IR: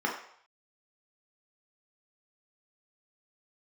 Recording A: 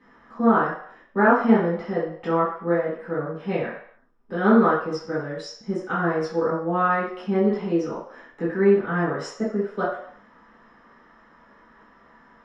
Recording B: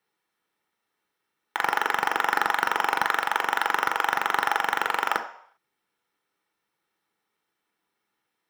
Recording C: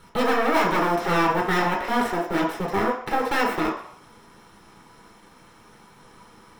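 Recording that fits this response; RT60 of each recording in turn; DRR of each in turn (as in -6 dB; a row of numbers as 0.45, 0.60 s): C; 0.65, 0.65, 0.65 s; -11.5, 5.5, -2.0 dB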